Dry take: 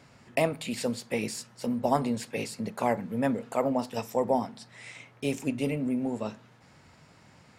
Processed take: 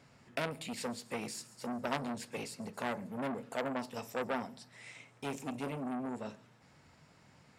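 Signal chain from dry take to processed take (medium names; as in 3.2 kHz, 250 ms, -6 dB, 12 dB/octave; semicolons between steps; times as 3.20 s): feedback echo behind a high-pass 139 ms, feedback 55%, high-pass 5.4 kHz, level -14.5 dB; on a send at -17 dB: reverberation RT60 0.45 s, pre-delay 4 ms; on the sum: transformer saturation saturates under 2.1 kHz; trim -6 dB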